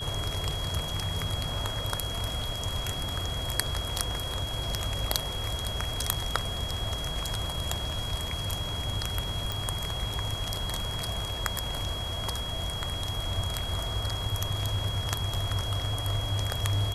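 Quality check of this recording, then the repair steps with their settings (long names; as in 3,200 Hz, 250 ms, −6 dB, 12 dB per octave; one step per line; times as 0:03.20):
whistle 3,300 Hz −35 dBFS
0:09.52: click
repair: click removal
notch filter 3,300 Hz, Q 30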